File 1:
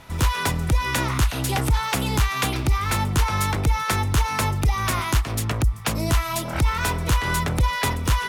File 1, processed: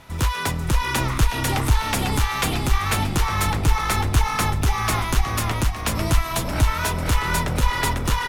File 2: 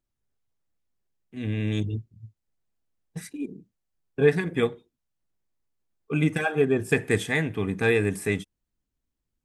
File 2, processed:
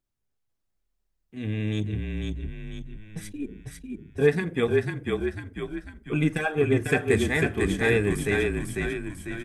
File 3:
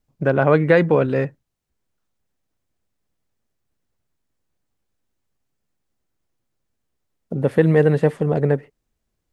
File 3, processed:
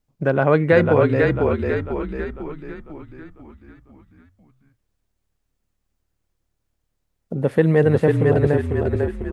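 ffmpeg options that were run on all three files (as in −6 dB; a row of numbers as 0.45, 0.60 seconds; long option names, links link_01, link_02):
-filter_complex "[0:a]asplit=8[link_01][link_02][link_03][link_04][link_05][link_06][link_07][link_08];[link_02]adelay=497,afreqshift=-37,volume=-3dB[link_09];[link_03]adelay=994,afreqshift=-74,volume=-8.8dB[link_10];[link_04]adelay=1491,afreqshift=-111,volume=-14.7dB[link_11];[link_05]adelay=1988,afreqshift=-148,volume=-20.5dB[link_12];[link_06]adelay=2485,afreqshift=-185,volume=-26.4dB[link_13];[link_07]adelay=2982,afreqshift=-222,volume=-32.2dB[link_14];[link_08]adelay=3479,afreqshift=-259,volume=-38.1dB[link_15];[link_01][link_09][link_10][link_11][link_12][link_13][link_14][link_15]amix=inputs=8:normalize=0,volume=-1dB"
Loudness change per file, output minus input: +0.5, −0.5, −1.0 LU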